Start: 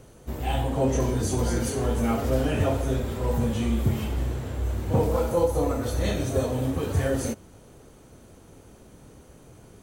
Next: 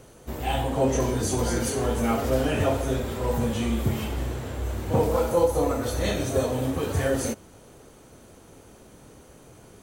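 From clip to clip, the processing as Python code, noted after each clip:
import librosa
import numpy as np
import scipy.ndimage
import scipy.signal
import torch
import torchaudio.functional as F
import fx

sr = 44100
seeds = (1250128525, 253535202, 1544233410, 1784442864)

y = fx.low_shelf(x, sr, hz=250.0, db=-6.0)
y = y * 10.0 ** (3.0 / 20.0)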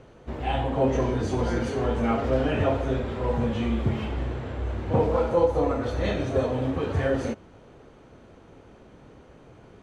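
y = scipy.signal.sosfilt(scipy.signal.butter(2, 3000.0, 'lowpass', fs=sr, output='sos'), x)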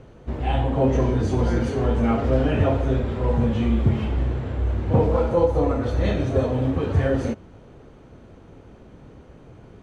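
y = fx.low_shelf(x, sr, hz=280.0, db=7.5)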